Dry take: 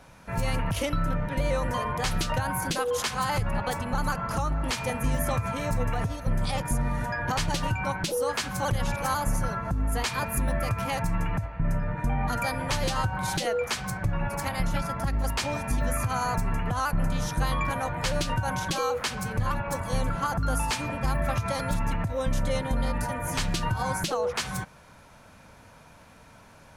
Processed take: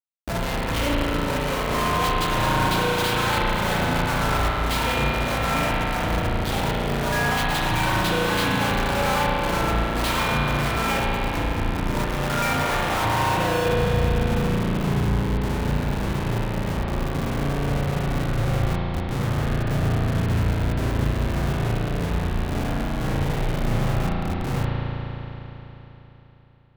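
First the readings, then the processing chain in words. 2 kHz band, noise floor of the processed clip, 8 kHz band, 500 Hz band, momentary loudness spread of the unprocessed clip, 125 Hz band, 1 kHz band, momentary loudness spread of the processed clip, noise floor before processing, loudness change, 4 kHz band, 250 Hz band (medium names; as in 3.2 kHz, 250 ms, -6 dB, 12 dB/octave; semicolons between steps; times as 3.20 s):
+6.5 dB, -41 dBFS, -0.5 dB, +5.0 dB, 2 LU, +5.5 dB, +5.0 dB, 5 LU, -52 dBFS, +5.0 dB, +6.0 dB, +7.0 dB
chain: low-pass sweep 3.8 kHz -> 140 Hz, 12.10–14.72 s; Schmitt trigger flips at -36 dBFS; spring tank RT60 3.7 s, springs 35 ms, chirp 20 ms, DRR -4 dB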